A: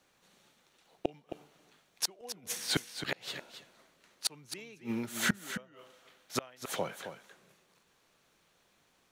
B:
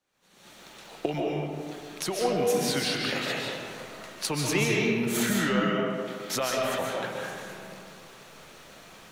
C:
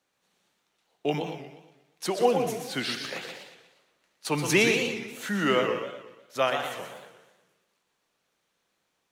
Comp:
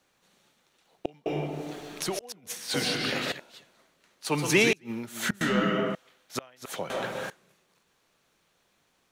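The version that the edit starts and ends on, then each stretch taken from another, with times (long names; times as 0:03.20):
A
0:01.26–0:02.19: punch in from B
0:02.74–0:03.32: punch in from B
0:04.25–0:04.73: punch in from C
0:05.41–0:05.95: punch in from B
0:06.90–0:07.30: punch in from B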